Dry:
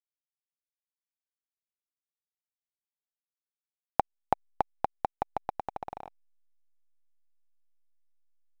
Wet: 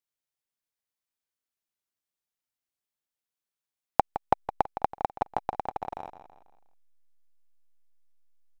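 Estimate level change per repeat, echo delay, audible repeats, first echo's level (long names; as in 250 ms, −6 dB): −7.5 dB, 164 ms, 4, −11.5 dB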